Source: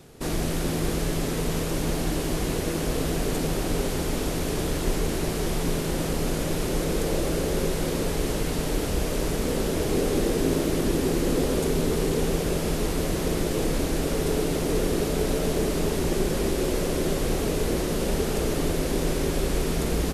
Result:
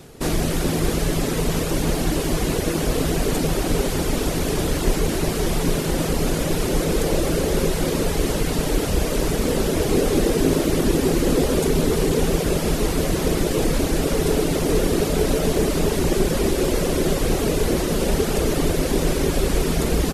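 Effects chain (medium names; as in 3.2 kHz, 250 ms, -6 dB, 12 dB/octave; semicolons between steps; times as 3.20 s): reverb removal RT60 0.58 s; trim +6.5 dB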